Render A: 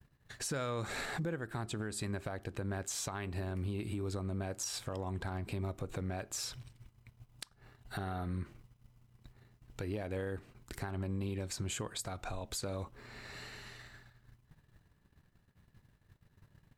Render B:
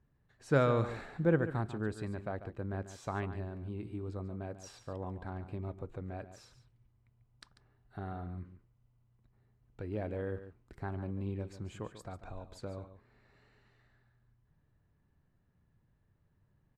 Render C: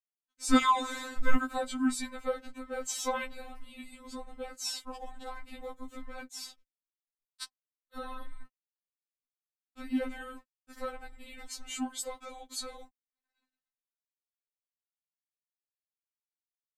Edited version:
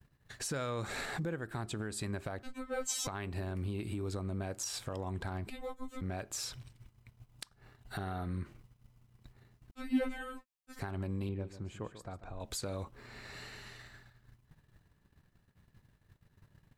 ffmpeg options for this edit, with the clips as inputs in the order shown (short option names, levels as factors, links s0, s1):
-filter_complex "[2:a]asplit=3[s0][s1][s2];[0:a]asplit=5[s3][s4][s5][s6][s7];[s3]atrim=end=2.432[s8];[s0]atrim=start=2.428:end=3.072[s9];[s4]atrim=start=3.068:end=5.502[s10];[s1]atrim=start=5.498:end=6.012[s11];[s5]atrim=start=6.008:end=9.712[s12];[s2]atrim=start=9.708:end=10.792[s13];[s6]atrim=start=10.788:end=11.292[s14];[1:a]atrim=start=11.288:end=12.402[s15];[s7]atrim=start=12.398[s16];[s8][s9]acrossfade=d=0.004:c1=hsin:c2=hsin[s17];[s17][s10]acrossfade=d=0.004:c1=hsin:c2=hsin[s18];[s18][s11]acrossfade=d=0.004:c1=hsin:c2=hsin[s19];[s19][s12]acrossfade=d=0.004:c1=hsin:c2=hsin[s20];[s20][s13]acrossfade=d=0.004:c1=hsin:c2=hsin[s21];[s21][s14]acrossfade=d=0.004:c1=hsin:c2=hsin[s22];[s22][s15]acrossfade=d=0.004:c1=hsin:c2=hsin[s23];[s23][s16]acrossfade=d=0.004:c1=hsin:c2=hsin"